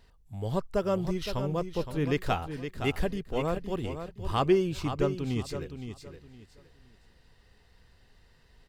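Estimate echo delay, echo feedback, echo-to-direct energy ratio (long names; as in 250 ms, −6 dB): 516 ms, 26%, −8.5 dB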